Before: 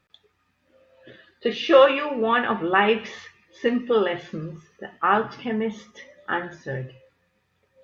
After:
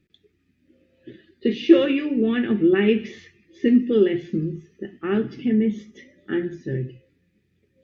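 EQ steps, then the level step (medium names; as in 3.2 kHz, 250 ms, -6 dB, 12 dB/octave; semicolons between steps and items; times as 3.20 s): FFT filter 110 Hz 0 dB, 360 Hz +7 dB, 510 Hz -11 dB, 1 kHz -27 dB, 2 kHz -7 dB, 3.8 kHz -9 dB; +4.0 dB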